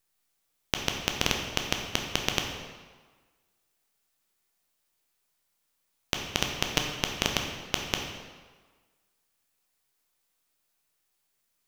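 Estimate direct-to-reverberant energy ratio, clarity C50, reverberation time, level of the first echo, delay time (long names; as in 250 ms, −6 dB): 1.5 dB, 4.0 dB, 1.5 s, no echo audible, no echo audible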